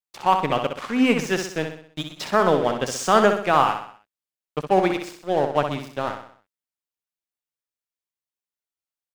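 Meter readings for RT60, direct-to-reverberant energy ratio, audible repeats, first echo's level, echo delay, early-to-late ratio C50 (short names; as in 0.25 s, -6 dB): none, none, 5, -7.0 dB, 63 ms, none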